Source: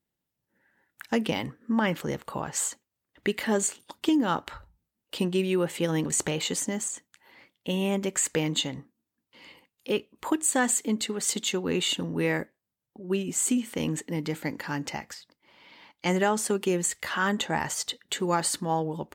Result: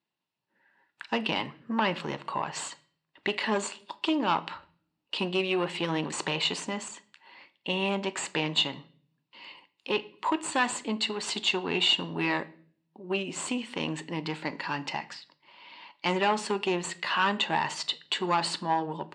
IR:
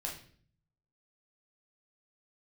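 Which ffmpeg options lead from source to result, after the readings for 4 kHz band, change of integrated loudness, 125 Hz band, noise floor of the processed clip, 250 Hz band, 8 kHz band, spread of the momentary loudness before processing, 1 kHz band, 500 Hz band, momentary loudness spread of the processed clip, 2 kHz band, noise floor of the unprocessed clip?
+4.0 dB, -1.5 dB, -5.5 dB, -81 dBFS, -4.5 dB, -10.5 dB, 8 LU, +2.5 dB, -3.0 dB, 16 LU, +1.5 dB, under -85 dBFS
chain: -filter_complex "[0:a]bandreject=f=490:w=12,aeval=exprs='(tanh(10*val(0)+0.45)-tanh(0.45))/10':c=same,highpass=200,equalizer=f=250:t=q:w=4:g=-4,equalizer=f=1000:t=q:w=4:g=8,equalizer=f=2700:t=q:w=4:g=8,equalizer=f=4200:t=q:w=4:g=5,equalizer=f=6400:t=q:w=4:g=-9,lowpass=f=6800:w=0.5412,lowpass=f=6800:w=1.3066,asplit=2[s0][s1];[1:a]atrim=start_sample=2205[s2];[s1][s2]afir=irnorm=-1:irlink=0,volume=0.282[s3];[s0][s3]amix=inputs=2:normalize=0"

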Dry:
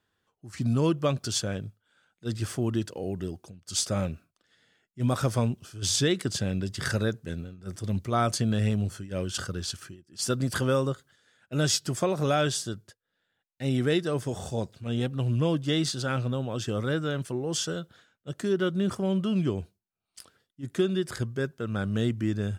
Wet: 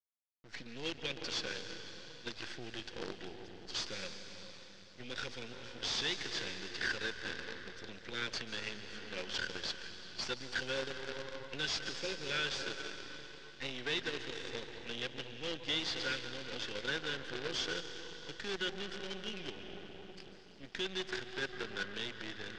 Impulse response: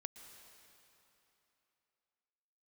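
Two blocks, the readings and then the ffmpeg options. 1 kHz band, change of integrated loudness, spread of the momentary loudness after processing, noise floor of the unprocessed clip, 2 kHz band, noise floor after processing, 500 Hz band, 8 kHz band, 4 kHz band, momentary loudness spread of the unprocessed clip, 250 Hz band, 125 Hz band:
-12.0 dB, -11.0 dB, 12 LU, -82 dBFS, -1.0 dB, -54 dBFS, -13.5 dB, -14.5 dB, -2.5 dB, 12 LU, -18.5 dB, -24.5 dB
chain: -filter_complex "[0:a]asuperstop=centerf=880:order=20:qfactor=1[s0];[1:a]atrim=start_sample=2205,asetrate=36603,aresample=44100[s1];[s0][s1]afir=irnorm=-1:irlink=0,acrossover=split=120|2500[s2][s3][s4];[s3]alimiter=level_in=1.88:limit=0.0631:level=0:latency=1:release=161,volume=0.531[s5];[s4]adynamicequalizer=threshold=0.00282:dfrequency=3500:dqfactor=1.2:tfrequency=3500:tqfactor=1.2:attack=5:release=100:ratio=0.375:range=2:mode=cutabove:tftype=bell[s6];[s2][s5][s6]amix=inputs=3:normalize=0,acrossover=split=270[s7][s8];[s7]acompressor=threshold=0.00708:ratio=6[s9];[s9][s8]amix=inputs=2:normalize=0,tiltshelf=f=1200:g=-5.5,asplit=2[s10][s11];[s11]highpass=f=720:p=1,volume=7.94,asoftclip=type=tanh:threshold=0.133[s12];[s10][s12]amix=inputs=2:normalize=0,lowpass=f=2000:p=1,volume=0.501,acrusher=bits=6:dc=4:mix=0:aa=0.000001,lowpass=f=5200:w=0.5412,lowpass=f=5200:w=1.3066,volume=0.708"

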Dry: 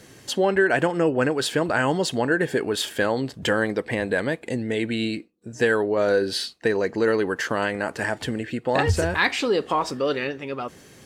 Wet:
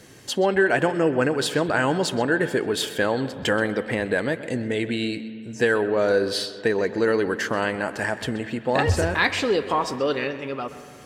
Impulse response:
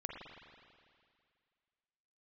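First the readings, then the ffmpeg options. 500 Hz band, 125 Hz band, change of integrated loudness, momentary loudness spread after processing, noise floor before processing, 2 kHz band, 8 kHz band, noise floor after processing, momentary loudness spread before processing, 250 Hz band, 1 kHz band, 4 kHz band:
+0.5 dB, 0.0 dB, 0.0 dB, 8 LU, -49 dBFS, 0.0 dB, 0.0 dB, -41 dBFS, 8 LU, 0.0 dB, +0.5 dB, 0.0 dB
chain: -filter_complex "[0:a]asplit=2[s0][s1];[1:a]atrim=start_sample=2205,lowpass=6300,adelay=129[s2];[s1][s2]afir=irnorm=-1:irlink=0,volume=0.266[s3];[s0][s3]amix=inputs=2:normalize=0"

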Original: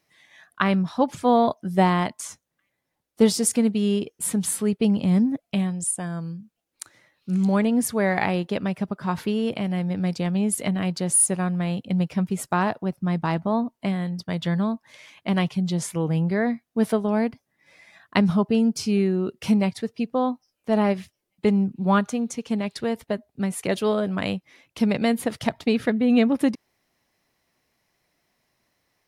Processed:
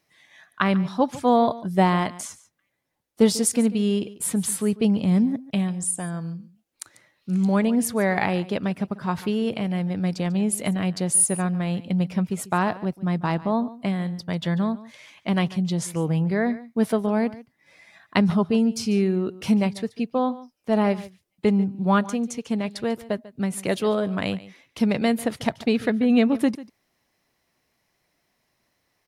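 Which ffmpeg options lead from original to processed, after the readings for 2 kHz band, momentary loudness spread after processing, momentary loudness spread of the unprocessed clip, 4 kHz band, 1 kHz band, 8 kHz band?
0.0 dB, 9 LU, 9 LU, 0.0 dB, 0.0 dB, 0.0 dB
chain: -af "aecho=1:1:144:0.126"

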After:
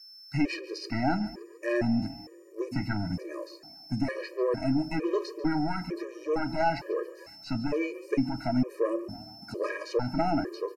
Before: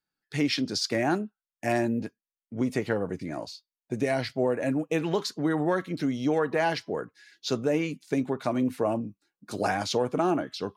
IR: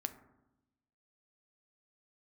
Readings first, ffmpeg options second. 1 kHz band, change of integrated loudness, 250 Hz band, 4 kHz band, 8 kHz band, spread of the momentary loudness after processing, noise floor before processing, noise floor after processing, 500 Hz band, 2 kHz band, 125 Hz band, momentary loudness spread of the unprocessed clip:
-1.5 dB, -2.5 dB, -1.5 dB, -7.0 dB, under -10 dB, 12 LU, under -85 dBFS, -50 dBFS, -3.0 dB, -3.5 dB, -0.5 dB, 11 LU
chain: -filter_complex "[0:a]acrossover=split=4100[s0][s1];[s1]acompressor=threshold=0.00126:ratio=6[s2];[s0][s2]amix=inputs=2:normalize=0,aeval=exprs='(tanh(7.94*val(0)+0.5)-tanh(0.5))/7.94':c=same,aeval=exprs='val(0)+0.00316*sin(2*PI*5300*n/s)':c=same,aeval=exprs='val(0)*gte(abs(val(0)),0.00168)':c=same,asuperstop=centerf=3400:order=4:qfactor=2.6,asplit=6[s3][s4][s5][s6][s7][s8];[s4]adelay=142,afreqshift=38,volume=0.126[s9];[s5]adelay=284,afreqshift=76,volume=0.0716[s10];[s6]adelay=426,afreqshift=114,volume=0.0407[s11];[s7]adelay=568,afreqshift=152,volume=0.0234[s12];[s8]adelay=710,afreqshift=190,volume=0.0133[s13];[s3][s9][s10][s11][s12][s13]amix=inputs=6:normalize=0,asplit=2[s14][s15];[1:a]atrim=start_sample=2205,asetrate=57330,aresample=44100,lowshelf=f=320:g=8.5[s16];[s15][s16]afir=irnorm=-1:irlink=0,volume=0.668[s17];[s14][s17]amix=inputs=2:normalize=0,aresample=32000,aresample=44100,afftfilt=real='re*gt(sin(2*PI*1.1*pts/sr)*(1-2*mod(floor(b*sr/1024/320),2)),0)':imag='im*gt(sin(2*PI*1.1*pts/sr)*(1-2*mod(floor(b*sr/1024/320),2)),0)':win_size=1024:overlap=0.75"

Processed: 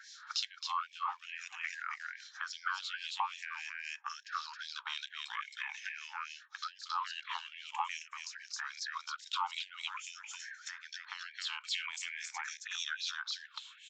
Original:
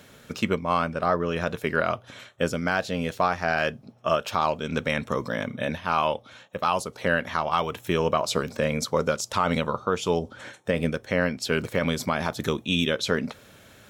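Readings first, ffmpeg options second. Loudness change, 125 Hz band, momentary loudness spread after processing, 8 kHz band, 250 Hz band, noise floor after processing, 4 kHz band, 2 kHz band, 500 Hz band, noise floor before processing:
-13.5 dB, under -40 dB, 8 LU, -8.0 dB, under -40 dB, -60 dBFS, -6.0 dB, -10.5 dB, under -40 dB, -52 dBFS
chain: -filter_complex "[0:a]afftfilt=real='re*pow(10,14/40*sin(2*PI*(0.57*log(max(b,1)*sr/1024/100)/log(2)-(-0.47)*(pts-256)/sr)))':imag='im*pow(10,14/40*sin(2*PI*(0.57*log(max(b,1)*sr/1024/100)/log(2)-(-0.47)*(pts-256)/sr)))':win_size=1024:overlap=0.75,asplit=2[s0][s1];[s1]aeval=exprs='sgn(val(0))*max(abs(val(0))-0.0168,0)':c=same,volume=0.398[s2];[s0][s2]amix=inputs=2:normalize=0,lowshelf=f=81:g=-7,aecho=1:1:268:0.668,deesser=0.65,bass=f=250:g=-13,treble=f=4000:g=7,acompressor=threshold=0.0398:ratio=10,acrossover=split=2300[s3][s4];[s3]aeval=exprs='val(0)*(1-1/2+1/2*cos(2*PI*3.7*n/s))':c=same[s5];[s4]aeval=exprs='val(0)*(1-1/2-1/2*cos(2*PI*3.7*n/s))':c=same[s6];[s5][s6]amix=inputs=2:normalize=0,aresample=16000,aresample=44100,afftfilt=real='re*gte(b*sr/1024,770*pow(1600/770,0.5+0.5*sin(2*PI*2.4*pts/sr)))':imag='im*gte(b*sr/1024,770*pow(1600/770,0.5+0.5*sin(2*PI*2.4*pts/sr)))':win_size=1024:overlap=0.75,volume=1.19"

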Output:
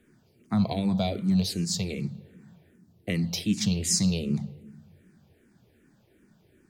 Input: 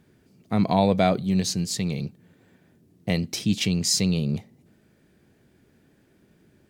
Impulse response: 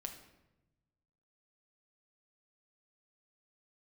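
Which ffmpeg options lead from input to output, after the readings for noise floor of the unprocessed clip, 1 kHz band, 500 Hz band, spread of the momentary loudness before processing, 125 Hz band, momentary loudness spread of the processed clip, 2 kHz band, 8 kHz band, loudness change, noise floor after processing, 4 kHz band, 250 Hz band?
-62 dBFS, -11.0 dB, -8.5 dB, 10 LU, -2.5 dB, 11 LU, -5.5 dB, -1.5 dB, -3.0 dB, -64 dBFS, -3.5 dB, -2.0 dB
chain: -filter_complex "[0:a]acrossover=split=270|3000[s0][s1][s2];[s1]acompressor=threshold=0.0355:ratio=6[s3];[s0][s3][s2]amix=inputs=3:normalize=0,asplit=2[s4][s5];[1:a]atrim=start_sample=2205,asetrate=29988,aresample=44100[s6];[s5][s6]afir=irnorm=-1:irlink=0,volume=0.596[s7];[s4][s7]amix=inputs=2:normalize=0,asplit=2[s8][s9];[s9]afreqshift=-2.6[s10];[s8][s10]amix=inputs=2:normalize=1,volume=0.75"

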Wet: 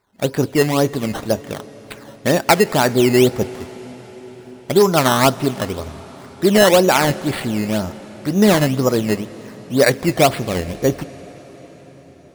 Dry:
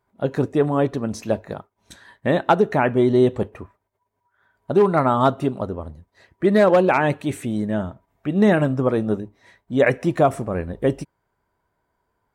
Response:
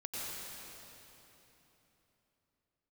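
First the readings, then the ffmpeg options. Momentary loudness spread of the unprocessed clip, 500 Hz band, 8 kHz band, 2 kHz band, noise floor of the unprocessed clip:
14 LU, +3.0 dB, no reading, +5.5 dB, -75 dBFS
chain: -filter_complex "[0:a]aemphasis=mode=production:type=50kf,acrusher=samples=13:mix=1:aa=0.000001:lfo=1:lforange=13:lforate=2,asplit=2[s0][s1];[1:a]atrim=start_sample=2205,asetrate=23814,aresample=44100[s2];[s1][s2]afir=irnorm=-1:irlink=0,volume=0.0668[s3];[s0][s3]amix=inputs=2:normalize=0,volume=1.33"

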